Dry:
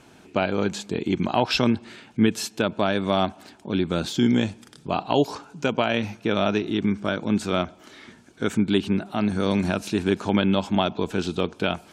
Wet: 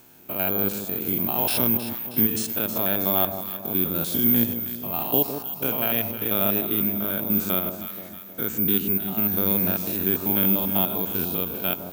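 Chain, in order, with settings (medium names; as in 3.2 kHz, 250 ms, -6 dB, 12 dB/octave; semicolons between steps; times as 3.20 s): spectrogram pixelated in time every 100 ms; treble shelf 7.6 kHz +8 dB; careless resampling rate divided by 3×, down none, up zero stuff; on a send: echo whose repeats swap between lows and highs 158 ms, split 1 kHz, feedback 70%, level -7.5 dB; on the sum: trim -4 dB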